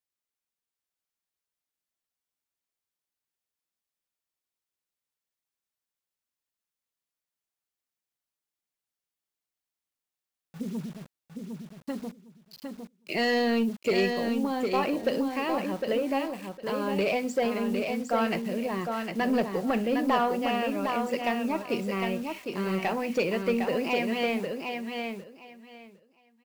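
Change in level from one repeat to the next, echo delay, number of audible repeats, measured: -15.0 dB, 0.757 s, 3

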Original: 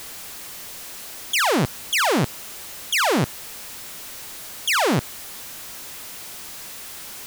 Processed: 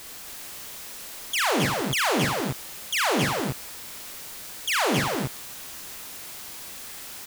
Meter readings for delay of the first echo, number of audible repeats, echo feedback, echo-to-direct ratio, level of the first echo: 43 ms, 4, no steady repeat, 0.0 dB, -5.0 dB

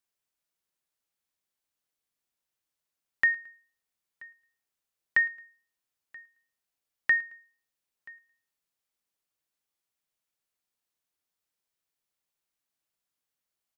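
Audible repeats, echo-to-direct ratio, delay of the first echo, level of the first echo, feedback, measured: 2, -23.0 dB, 0.11 s, -23.5 dB, 36%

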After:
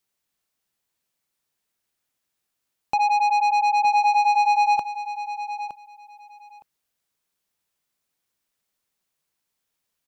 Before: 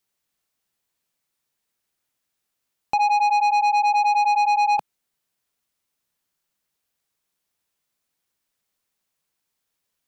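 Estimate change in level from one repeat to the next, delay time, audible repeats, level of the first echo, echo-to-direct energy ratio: -15.0 dB, 0.914 s, 2, -11.5 dB, -11.5 dB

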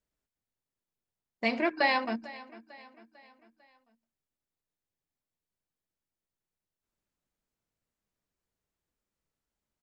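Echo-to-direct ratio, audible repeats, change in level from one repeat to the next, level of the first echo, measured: -18.0 dB, 3, -6.5 dB, -19.0 dB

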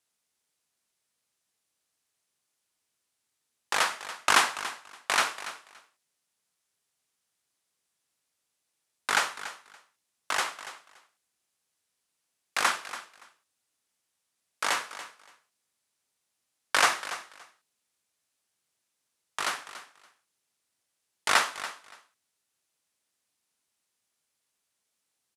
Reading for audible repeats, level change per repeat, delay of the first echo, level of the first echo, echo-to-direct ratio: 2, -15.5 dB, 0.285 s, -14.0 dB, -14.0 dB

